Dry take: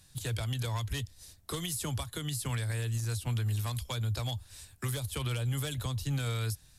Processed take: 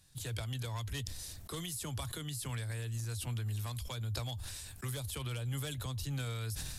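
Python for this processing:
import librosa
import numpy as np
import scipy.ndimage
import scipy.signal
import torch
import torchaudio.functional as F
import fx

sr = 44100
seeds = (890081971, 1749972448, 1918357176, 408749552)

y = fx.sustainer(x, sr, db_per_s=24.0)
y = y * librosa.db_to_amplitude(-6.0)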